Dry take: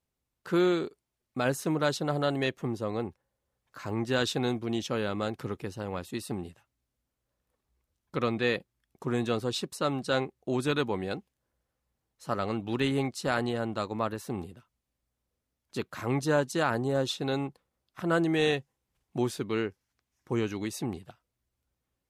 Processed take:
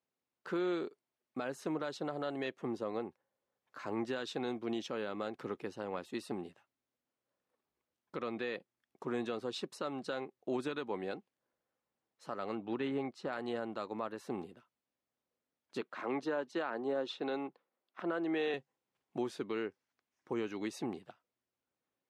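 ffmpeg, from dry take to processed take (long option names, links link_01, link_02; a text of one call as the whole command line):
ffmpeg -i in.wav -filter_complex "[0:a]asettb=1/sr,asplit=3[link_01][link_02][link_03];[link_01]atrim=end=12.554[link_04];[link_02]atrim=start=12.55:end=13.33,asetpts=PTS-STARTPTS,afade=type=in:duration=0.004:curve=qsin,afade=type=out:start_time=0.776:duration=0.004:curve=qsin,lowpass=frequency=2000:poles=1[link_05];[link_03]atrim=start=13.326[link_06];[link_04][link_05]acrossfade=duration=0.004:curve1=hsin:curve2=qsin[link_07];[link_07][link_06]acrossfade=duration=0.004:curve1=qsin:curve2=hsin,asettb=1/sr,asplit=3[link_08][link_09][link_10];[link_08]atrim=end=15.814[link_11];[link_09]atrim=start=15.81:end=18.54,asetpts=PTS-STARTPTS,afade=type=in:duration=0.004:curve=qsin,afade=type=out:start_time=2.726:duration=0.004:curve=qsin,acrossover=split=180 4500:gain=0.0891 1 0.224[link_12][link_13][link_14];[link_12][link_13][link_14]amix=inputs=3:normalize=0[link_15];[link_10]atrim=start=18.536[link_16];[link_11][link_15]acrossfade=duration=0.004:curve1=hsin:curve2=qsin[link_17];[link_17][link_16]acrossfade=duration=0.004:curve1=qsin:curve2=hsin,highpass=250,aemphasis=mode=reproduction:type=50fm,alimiter=limit=-24dB:level=0:latency=1:release=219,volume=-2.5dB" out.wav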